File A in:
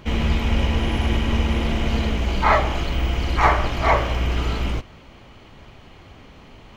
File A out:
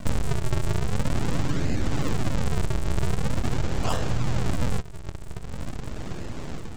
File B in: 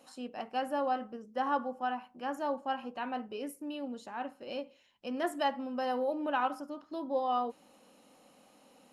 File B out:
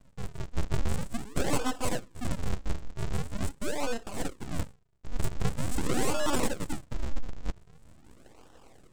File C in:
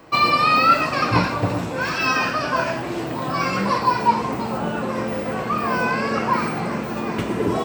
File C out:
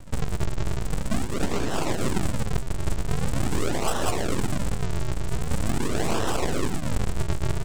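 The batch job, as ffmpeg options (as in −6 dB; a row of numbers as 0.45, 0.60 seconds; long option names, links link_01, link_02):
-filter_complex "[0:a]lowpass=frequency=1100:width=0.5412,lowpass=frequency=1100:width=1.3066,lowshelf=frequency=370:gain=11,dynaudnorm=framelen=150:gausssize=5:maxgain=4.5dB,asplit=2[link_01][link_02];[link_02]alimiter=limit=-10dB:level=0:latency=1,volume=-2dB[link_03];[link_01][link_03]amix=inputs=2:normalize=0,acompressor=threshold=-15dB:ratio=5,aresample=16000,acrusher=samples=36:mix=1:aa=0.000001:lfo=1:lforange=57.6:lforate=0.44,aresample=44100,aeval=exprs='abs(val(0))':channel_layout=same,volume=-4dB"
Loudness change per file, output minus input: −7.5, +1.0, −8.0 LU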